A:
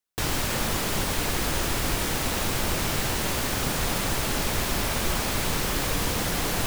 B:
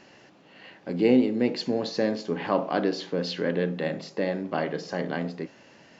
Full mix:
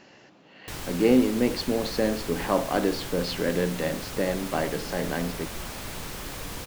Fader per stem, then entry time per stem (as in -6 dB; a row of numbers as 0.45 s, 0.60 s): -10.0 dB, +0.5 dB; 0.50 s, 0.00 s